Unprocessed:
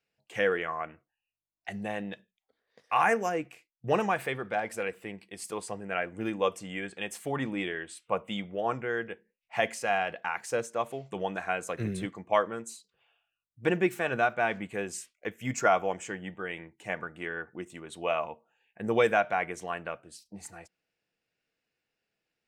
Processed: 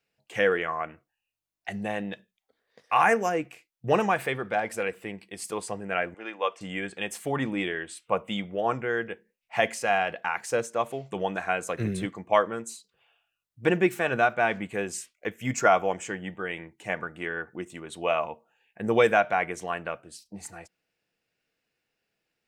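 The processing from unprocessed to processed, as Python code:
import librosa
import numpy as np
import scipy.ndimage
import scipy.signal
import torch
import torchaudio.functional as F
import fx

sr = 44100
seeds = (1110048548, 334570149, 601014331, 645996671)

y = fx.bandpass_edges(x, sr, low_hz=660.0, high_hz=3600.0, at=(6.14, 6.61))
y = y * librosa.db_to_amplitude(3.5)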